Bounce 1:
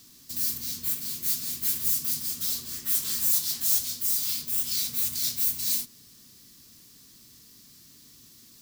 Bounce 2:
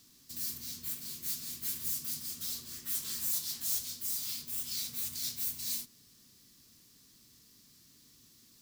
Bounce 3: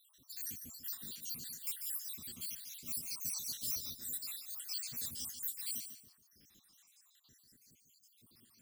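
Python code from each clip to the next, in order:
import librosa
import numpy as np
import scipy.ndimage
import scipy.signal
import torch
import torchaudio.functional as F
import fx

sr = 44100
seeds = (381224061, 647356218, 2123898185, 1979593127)

y1 = fx.high_shelf(x, sr, hz=12000.0, db=-4.0)
y1 = y1 * 10.0 ** (-7.0 / 20.0)
y2 = fx.spec_dropout(y1, sr, seeds[0], share_pct=79)
y2 = fx.echo_feedback(y2, sr, ms=146, feedback_pct=24, wet_db=-9.5)
y2 = y2 * 10.0 ** (1.5 / 20.0)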